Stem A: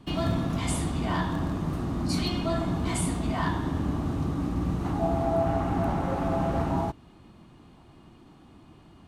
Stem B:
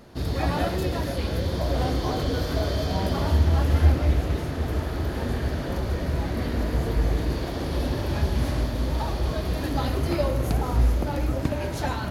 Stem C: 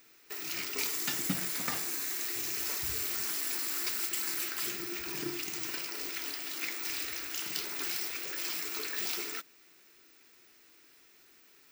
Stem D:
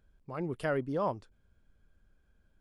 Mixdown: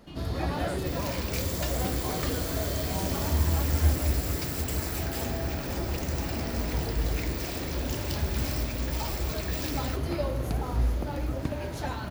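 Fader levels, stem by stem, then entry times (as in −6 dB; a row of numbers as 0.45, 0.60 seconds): −14.0, −5.5, −2.5, −7.0 decibels; 0.00, 0.00, 0.55, 0.00 seconds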